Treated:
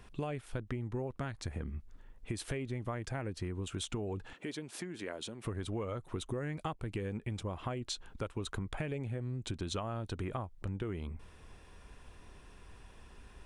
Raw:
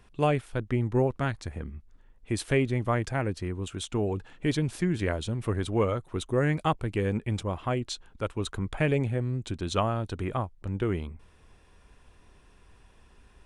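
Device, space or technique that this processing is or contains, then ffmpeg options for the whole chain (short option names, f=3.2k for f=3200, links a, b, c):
serial compression, peaks first: -filter_complex "[0:a]acompressor=threshold=-32dB:ratio=6,acompressor=threshold=-40dB:ratio=2,asettb=1/sr,asplit=3[a][b][c];[a]atrim=end=4.334[d];[b]atrim=start=4.33:end=5.45,asetpts=PTS-STARTPTS,afade=t=in:d=0.004:c=qsin,afade=t=out:st=1.116:d=0.004:c=qsin,highpass=270[e];[c]atrim=start=5.446[f];[d][e]acrossfade=d=0.004:c1=hsin:c2=qsin[g];[g][f]acrossfade=d=0.004:c1=qsin:c2=hsin,volume=2.5dB"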